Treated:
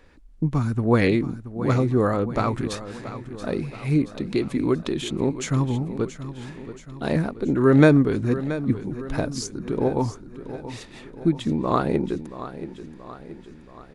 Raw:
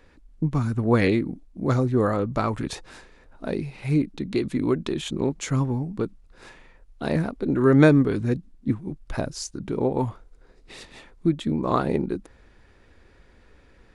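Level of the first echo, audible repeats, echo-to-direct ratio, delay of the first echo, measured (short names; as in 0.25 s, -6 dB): -13.0 dB, 5, -11.5 dB, 0.678 s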